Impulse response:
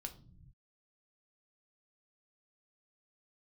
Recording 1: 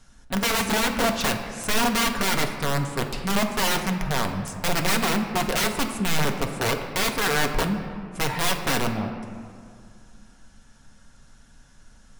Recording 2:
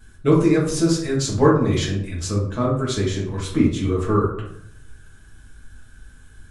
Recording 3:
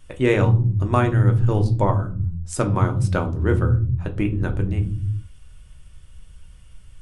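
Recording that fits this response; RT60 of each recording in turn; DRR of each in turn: 3; 2.3 s, 0.75 s, not exponential; 3.0, -6.5, 4.5 dB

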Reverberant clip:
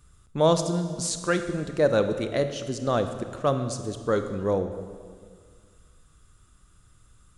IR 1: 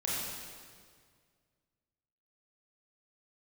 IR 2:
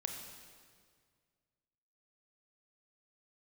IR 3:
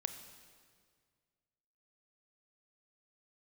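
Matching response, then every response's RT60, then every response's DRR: 3; 1.9, 1.9, 1.9 s; -6.5, 3.0, 8.5 dB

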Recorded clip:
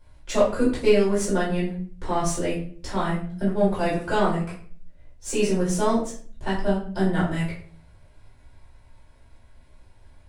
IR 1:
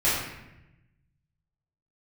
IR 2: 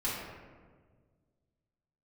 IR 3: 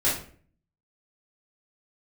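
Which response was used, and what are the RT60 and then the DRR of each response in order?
3; 0.90, 1.6, 0.50 s; -10.5, -10.5, -9.5 dB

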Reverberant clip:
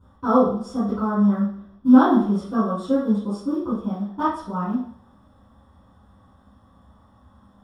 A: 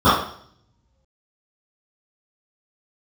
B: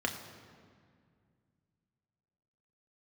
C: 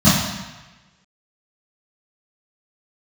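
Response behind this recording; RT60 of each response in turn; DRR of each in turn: A; 0.60, 2.1, 1.1 s; -18.5, 2.0, -13.5 dB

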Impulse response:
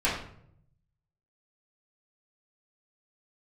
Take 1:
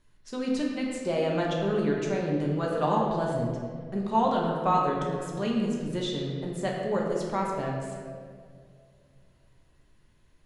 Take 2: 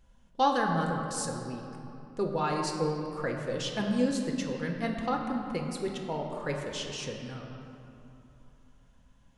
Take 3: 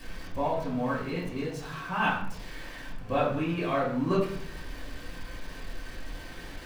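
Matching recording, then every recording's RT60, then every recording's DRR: 3; 2.2, 3.0, 0.65 s; -2.5, 1.0, -8.5 dB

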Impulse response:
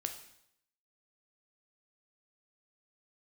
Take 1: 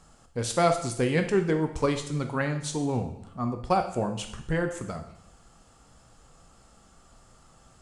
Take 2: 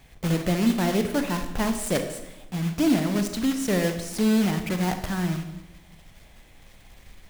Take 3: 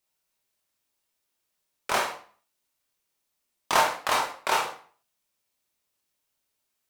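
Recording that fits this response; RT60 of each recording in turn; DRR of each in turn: 1; 0.75, 1.0, 0.45 s; 5.5, 6.5, -1.0 dB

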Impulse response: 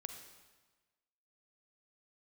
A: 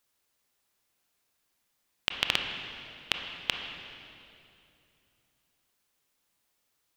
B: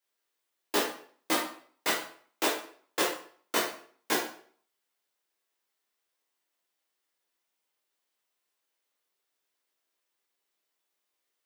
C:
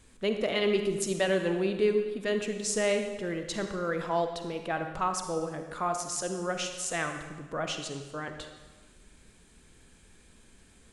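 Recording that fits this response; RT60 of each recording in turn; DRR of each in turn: C; 2.7, 0.50, 1.3 s; 3.0, -5.0, 6.0 dB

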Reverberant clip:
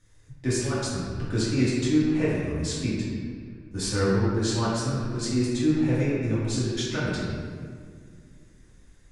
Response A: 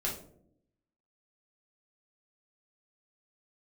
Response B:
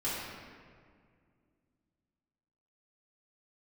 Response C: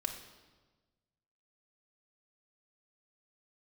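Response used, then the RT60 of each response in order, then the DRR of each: B; 0.70, 2.0, 1.3 s; -4.5, -10.5, 2.0 dB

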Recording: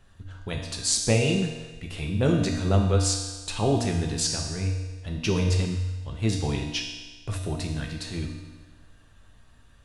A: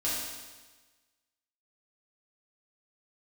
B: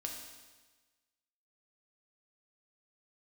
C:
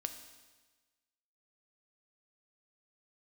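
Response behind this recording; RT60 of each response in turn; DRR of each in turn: B; 1.3, 1.3, 1.3 s; -9.0, 0.5, 7.0 dB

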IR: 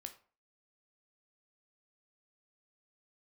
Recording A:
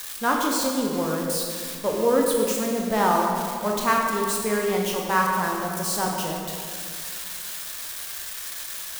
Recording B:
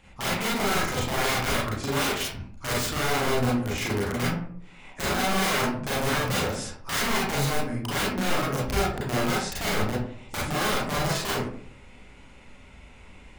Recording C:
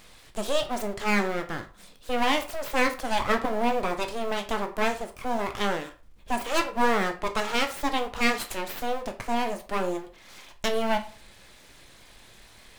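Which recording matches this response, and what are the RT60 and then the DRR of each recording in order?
C; 2.2, 0.60, 0.40 s; -1.0, -7.0, 6.0 dB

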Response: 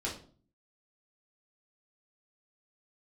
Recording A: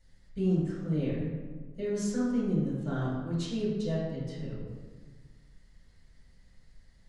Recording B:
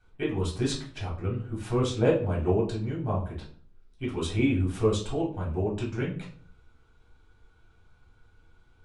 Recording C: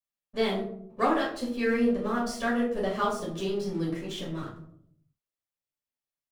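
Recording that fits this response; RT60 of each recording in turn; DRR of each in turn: B; 1.4, 0.45, 0.70 s; -10.0, -5.5, -6.5 dB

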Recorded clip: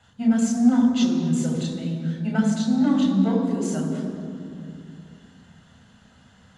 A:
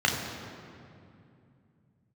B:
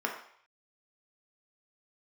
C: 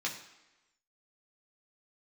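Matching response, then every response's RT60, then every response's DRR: A; 2.5, 0.60, 1.0 s; -1.0, 0.0, -2.5 dB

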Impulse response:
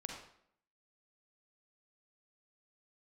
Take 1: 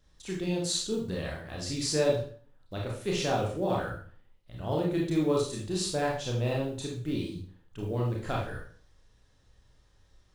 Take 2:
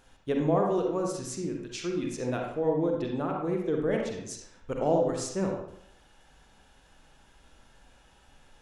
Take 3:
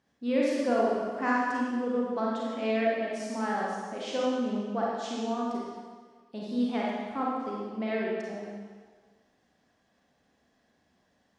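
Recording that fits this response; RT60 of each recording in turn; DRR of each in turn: 2; 0.45, 0.65, 1.6 s; -3.0, 0.5, -5.0 dB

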